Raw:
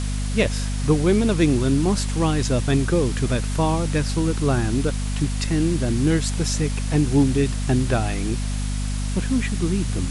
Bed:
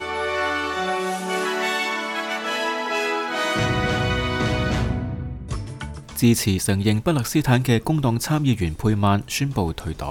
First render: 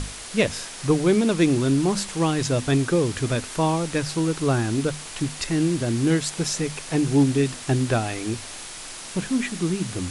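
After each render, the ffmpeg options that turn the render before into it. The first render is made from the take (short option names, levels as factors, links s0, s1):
-af "bandreject=f=50:t=h:w=6,bandreject=f=100:t=h:w=6,bandreject=f=150:t=h:w=6,bandreject=f=200:t=h:w=6,bandreject=f=250:t=h:w=6"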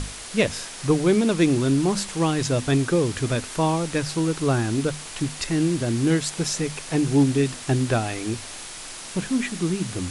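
-af anull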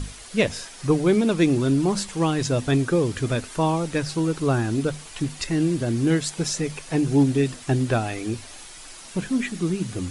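-af "afftdn=nr=8:nf=-38"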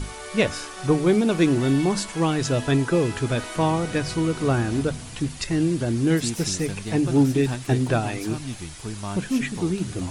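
-filter_complex "[1:a]volume=0.211[s0];[0:a][s0]amix=inputs=2:normalize=0"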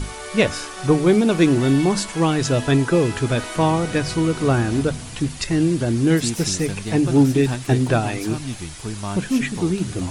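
-af "volume=1.5"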